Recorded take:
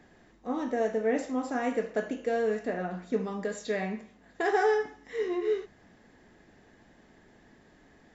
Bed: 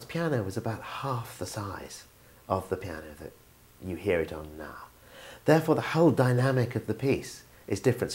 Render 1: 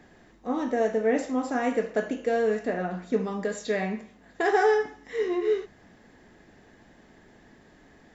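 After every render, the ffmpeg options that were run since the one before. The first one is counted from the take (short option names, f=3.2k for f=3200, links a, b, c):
-af "volume=3.5dB"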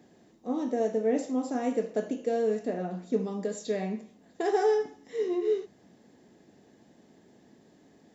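-af "highpass=150,equalizer=f=1.6k:t=o:w=1.9:g=-12.5"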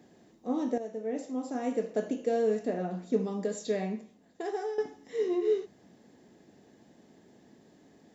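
-filter_complex "[0:a]asplit=3[a][b][c];[a]atrim=end=0.78,asetpts=PTS-STARTPTS,afade=t=out:st=0.776:d=0.004:c=hsin:silence=0.237137[d];[b]atrim=start=0.78:end=4.78,asetpts=PTS-STARTPTS,afade=t=in:d=1.35:silence=0.237137,afade=t=out:st=2.95:d=1.05:silence=0.211349[e];[c]atrim=start=4.78,asetpts=PTS-STARTPTS,afade=t=in:d=0.004:c=hsin:silence=0.211349[f];[d][e][f]concat=n=3:v=0:a=1"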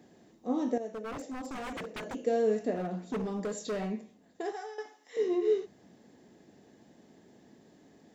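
-filter_complex "[0:a]asettb=1/sr,asplit=3[a][b][c];[a]atrim=end=0.884[d];[b]atrim=start=0.88:end=2.15,asetpts=PTS-STARTPTS,afade=t=in:d=0.004:c=qsin,afade=t=out:st=1.266:d=0.004:c=qsin,aeval=exprs='0.0211*(abs(mod(val(0)/0.0211+3,4)-2)-1)':c=same[e];[c]atrim=start=2.146[f];[d][e]acrossfade=d=0.004:c1=hsin:c2=qsin[g];[g][f]acrossfade=d=0.004:c1=qsin:c2=hsin,asettb=1/sr,asplit=3[h][i][j];[h]atrim=end=2.754[k];[i]atrim=start=2.75:end=3.91,asetpts=PTS-STARTPTS,afade=t=in:d=0.004:c=qsin,afade=t=out:st=1.156:d=0.004:c=qsin,asoftclip=type=hard:threshold=-30dB[l];[j]atrim=start=3.906[m];[k][l]acrossfade=d=0.004:c1=hsin:c2=qsin[n];[n][m]acrossfade=d=0.004:c1=qsin:c2=hsin,asettb=1/sr,asplit=3[o][p][q];[o]atrim=end=4.524[r];[p]atrim=start=4.52:end=5.17,asetpts=PTS-STARTPTS,afade=t=in:d=0.004:c=qsin,afade=t=out:st=0.646:d=0.004:c=qsin,highpass=750[s];[q]atrim=start=5.166[t];[r][s]acrossfade=d=0.004:c1=hsin:c2=qsin[u];[u][t]acrossfade=d=0.004:c1=qsin:c2=hsin"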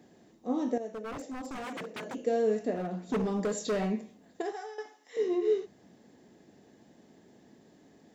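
-filter_complex "[0:a]asettb=1/sr,asplit=3[a][b][c];[a]atrim=end=1.644[d];[b]atrim=start=1.64:end=2.18,asetpts=PTS-STARTPTS,afade=t=in:d=0.004:c=qsin,afade=t=out:st=0.536:d=0.004:c=qsin,highpass=f=120:w=0.5412,highpass=f=120:w=1.3066[e];[c]atrim=start=2.176[f];[d][e]acrossfade=d=0.004:c1=hsin:c2=qsin[g];[g][f]acrossfade=d=0.004:c1=qsin:c2=hsin,asplit=3[h][i][j];[h]atrim=end=3.092[k];[i]atrim=start=3.088:end=4.422,asetpts=PTS-STARTPTS,volume=4dB[l];[j]atrim=start=4.418[m];[k][l]acrossfade=d=0.004:c1=hsin:c2=hsin[n];[n][m]acrossfade=d=0.004:c1=hsin:c2=hsin"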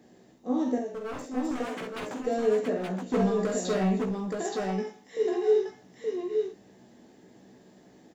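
-filter_complex "[0:a]asplit=2[a][b];[b]adelay=16,volume=-5.5dB[c];[a][c]amix=inputs=2:normalize=0,aecho=1:1:47|68|873:0.501|0.299|0.708"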